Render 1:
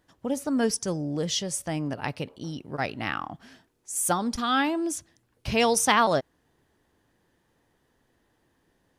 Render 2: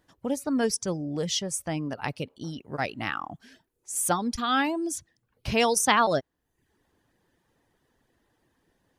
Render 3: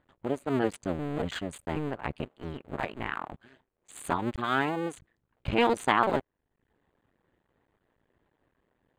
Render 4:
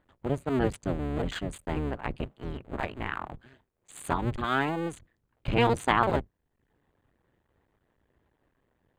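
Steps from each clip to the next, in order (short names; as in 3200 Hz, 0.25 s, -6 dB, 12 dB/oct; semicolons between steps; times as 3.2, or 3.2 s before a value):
reverb removal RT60 0.59 s
cycle switcher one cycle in 2, muted; running mean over 8 samples; gain +1 dB
octaver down 1 oct, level 0 dB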